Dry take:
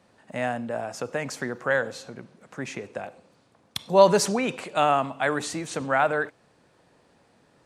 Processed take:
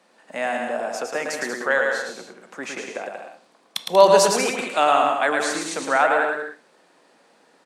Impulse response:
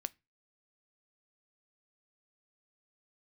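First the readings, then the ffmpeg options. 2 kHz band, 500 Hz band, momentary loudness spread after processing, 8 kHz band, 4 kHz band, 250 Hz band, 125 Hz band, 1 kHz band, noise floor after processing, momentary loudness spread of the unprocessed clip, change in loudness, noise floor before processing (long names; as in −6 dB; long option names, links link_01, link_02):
+6.0 dB, +4.0 dB, 19 LU, +6.0 dB, +6.0 dB, −0.5 dB, −7.0 dB, +5.5 dB, −59 dBFS, 19 LU, +4.5 dB, −62 dBFS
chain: -filter_complex "[0:a]highpass=frequency=200:width=0.5412,highpass=frequency=200:width=1.3066,aecho=1:1:110|187|240.9|278.6|305:0.631|0.398|0.251|0.158|0.1,asplit=2[link_01][link_02];[1:a]atrim=start_sample=2205,asetrate=35280,aresample=44100,lowshelf=frequency=280:gain=-11.5[link_03];[link_02][link_03]afir=irnorm=-1:irlink=0,volume=16.5dB[link_04];[link_01][link_04]amix=inputs=2:normalize=0,volume=-13dB"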